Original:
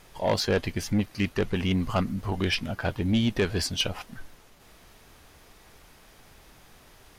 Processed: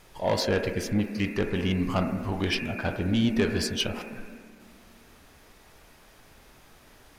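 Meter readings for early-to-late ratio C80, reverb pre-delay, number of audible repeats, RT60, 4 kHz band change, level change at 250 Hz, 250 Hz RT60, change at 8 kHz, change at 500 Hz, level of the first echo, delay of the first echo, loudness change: 11.0 dB, 17 ms, no echo audible, 1.7 s, −1.5 dB, +0.5 dB, 2.8 s, −1.5 dB, +0.5 dB, no echo audible, no echo audible, 0.0 dB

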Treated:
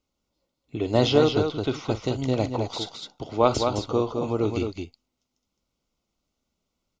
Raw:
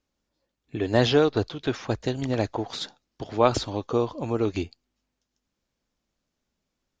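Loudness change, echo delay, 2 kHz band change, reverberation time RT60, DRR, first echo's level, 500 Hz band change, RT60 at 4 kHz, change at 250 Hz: +1.0 dB, 45 ms, −3.5 dB, no reverb audible, no reverb audible, −14.5 dB, +1.0 dB, no reverb audible, +1.0 dB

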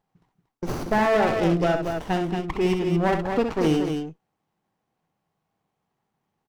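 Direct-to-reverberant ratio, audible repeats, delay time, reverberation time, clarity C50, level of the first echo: no reverb audible, 3, 65 ms, no reverb audible, no reverb audible, −7.0 dB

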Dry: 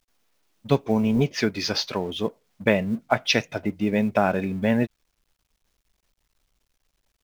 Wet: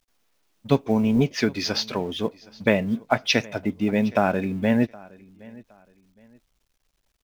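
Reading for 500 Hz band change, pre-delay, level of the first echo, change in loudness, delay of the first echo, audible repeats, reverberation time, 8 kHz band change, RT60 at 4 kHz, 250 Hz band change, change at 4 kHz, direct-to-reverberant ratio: 0.0 dB, no reverb audible, −23.0 dB, +0.5 dB, 767 ms, 2, no reverb audible, can't be measured, no reverb audible, +1.5 dB, 0.0 dB, no reverb audible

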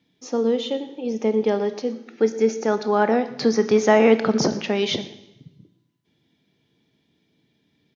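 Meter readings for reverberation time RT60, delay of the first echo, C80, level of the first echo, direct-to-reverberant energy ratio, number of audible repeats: 0.90 s, 121 ms, 14.5 dB, −19.0 dB, 11.0 dB, 1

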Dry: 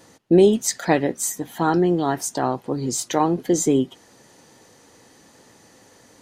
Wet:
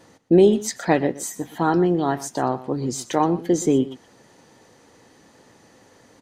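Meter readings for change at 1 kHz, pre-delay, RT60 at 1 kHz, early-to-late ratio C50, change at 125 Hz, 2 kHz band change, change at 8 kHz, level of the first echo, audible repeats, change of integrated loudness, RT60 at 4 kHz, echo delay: 0.0 dB, no reverb audible, no reverb audible, no reverb audible, 0.0 dB, −1.0 dB, −5.5 dB, −17.0 dB, 1, −0.5 dB, no reverb audible, 122 ms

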